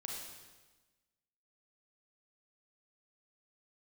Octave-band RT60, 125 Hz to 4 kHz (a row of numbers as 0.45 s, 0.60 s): 1.4 s, 1.4 s, 1.3 s, 1.2 s, 1.2 s, 1.2 s